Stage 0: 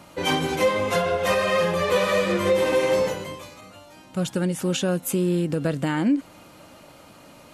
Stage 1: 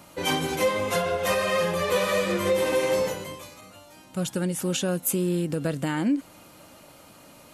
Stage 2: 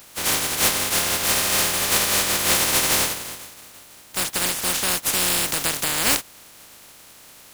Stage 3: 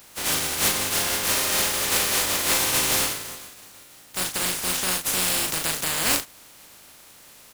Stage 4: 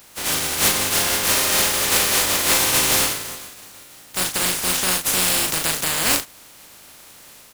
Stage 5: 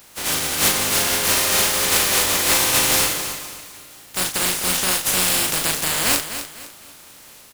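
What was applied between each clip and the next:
high shelf 8100 Hz +10 dB; gain -3 dB
spectral contrast lowered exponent 0.15; gain +4 dB
doubler 38 ms -5 dB; gain -3.5 dB
AGC gain up to 3 dB; gain +1.5 dB
feedback echo 0.252 s, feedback 33%, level -10.5 dB

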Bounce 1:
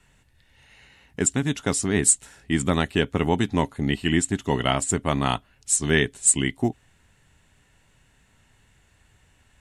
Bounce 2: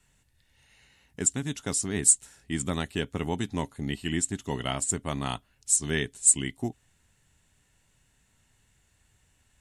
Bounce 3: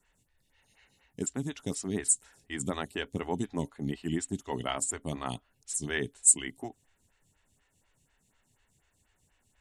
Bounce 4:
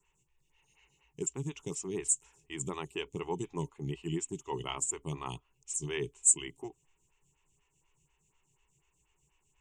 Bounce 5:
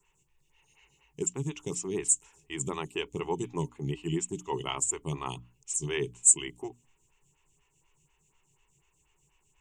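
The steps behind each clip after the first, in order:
tone controls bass +2 dB, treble +8 dB; gain -9 dB
photocell phaser 4.1 Hz
ripple EQ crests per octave 0.72, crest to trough 14 dB; gain -6 dB
notches 60/120/180/240/300 Hz; gain +4 dB

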